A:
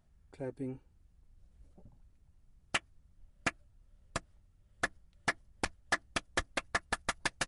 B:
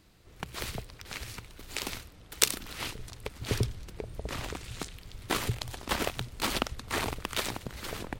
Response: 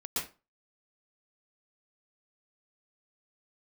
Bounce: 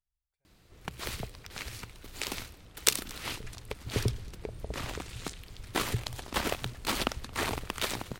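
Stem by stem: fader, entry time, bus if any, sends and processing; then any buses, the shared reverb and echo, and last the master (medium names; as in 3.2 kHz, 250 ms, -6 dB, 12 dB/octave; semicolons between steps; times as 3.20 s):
-15.0 dB, 0.00 s, no send, no echo send, amplifier tone stack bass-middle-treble 10-0-10; logarithmic tremolo 0.86 Hz, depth 18 dB
-0.5 dB, 0.45 s, no send, echo send -24 dB, none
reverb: none
echo: delay 223 ms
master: none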